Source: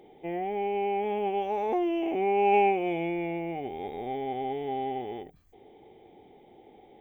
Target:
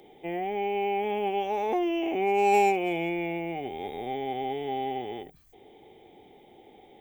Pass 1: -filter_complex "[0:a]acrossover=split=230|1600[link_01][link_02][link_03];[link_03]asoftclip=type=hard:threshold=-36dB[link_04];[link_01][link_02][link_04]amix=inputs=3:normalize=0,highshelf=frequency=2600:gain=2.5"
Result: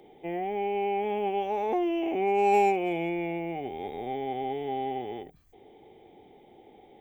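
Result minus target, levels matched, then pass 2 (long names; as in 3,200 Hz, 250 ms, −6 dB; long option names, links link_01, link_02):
4,000 Hz band −4.0 dB
-filter_complex "[0:a]acrossover=split=230|1600[link_01][link_02][link_03];[link_03]asoftclip=type=hard:threshold=-36dB[link_04];[link_01][link_02][link_04]amix=inputs=3:normalize=0,highshelf=frequency=2600:gain=10"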